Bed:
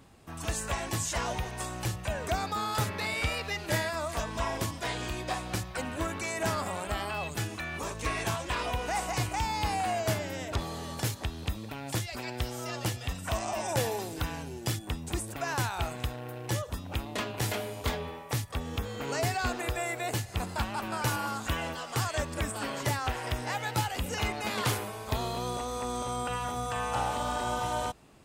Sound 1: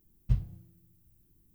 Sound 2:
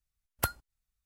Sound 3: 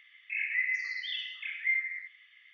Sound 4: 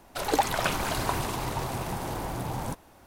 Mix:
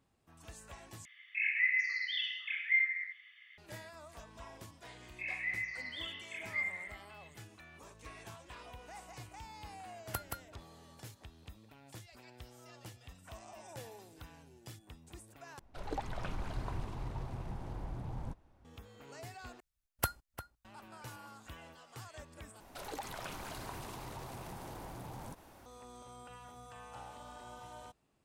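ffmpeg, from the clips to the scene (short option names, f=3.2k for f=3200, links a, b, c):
-filter_complex "[3:a]asplit=2[a][b];[2:a]asplit=2[c][d];[4:a]asplit=2[e][f];[0:a]volume=-19dB[g];[c]aecho=1:1:175:0.668[h];[e]aemphasis=mode=reproduction:type=bsi[i];[d]asplit=2[j][k];[k]adelay=349.9,volume=-12dB,highshelf=f=4k:g=-7.87[l];[j][l]amix=inputs=2:normalize=0[m];[f]acompressor=threshold=-51dB:ratio=2:attack=3.6:release=59:knee=1:detection=peak[n];[g]asplit=5[o][p][q][r][s];[o]atrim=end=1.054[t];[a]atrim=end=2.53[u];[p]atrim=start=3.576:end=15.594[v];[i]atrim=end=3.06,asetpts=PTS-STARTPTS,volume=-16.5dB[w];[q]atrim=start=18.646:end=19.604[x];[m]atrim=end=1.05,asetpts=PTS-STARTPTS,volume=-3dB[y];[r]atrim=start=20.646:end=22.604[z];[n]atrim=end=3.06,asetpts=PTS-STARTPTS,volume=-2.5dB[aa];[s]atrim=start=25.656[ab];[b]atrim=end=2.53,asetpts=PTS-STARTPTS,volume=-7dB,afade=t=in:d=0.004:c=hsin,afade=t=out:st=2.526:d=0.004:c=hsin,adelay=215649S[ac];[h]atrim=end=1.05,asetpts=PTS-STARTPTS,volume=-9.5dB,afade=t=in:d=0.004:c=hsin,afade=t=out:st=1.046:d=0.004:c=hsin,adelay=9710[ad];[t][u]acrossfade=d=0.004:c1=hsin:c2=hsin[ae];[ae][v]acrossfade=d=0.004:c1=hsin:c2=hsin[af];[af][w]acrossfade=d=0.004:c1=hsin:c2=hsin[ag];[ag][x]acrossfade=d=0.004:c1=hsin:c2=hsin[ah];[ah][y]acrossfade=d=0.004:c1=hsin:c2=hsin[ai];[ai][z]acrossfade=d=0.004:c1=hsin:c2=hsin[aj];[aj][aa]acrossfade=d=0.004:c1=hsin:c2=hsin[ak];[ak][ab]acrossfade=d=0.004:c1=hsin:c2=hsin[al];[al][ac][ad]amix=inputs=3:normalize=0"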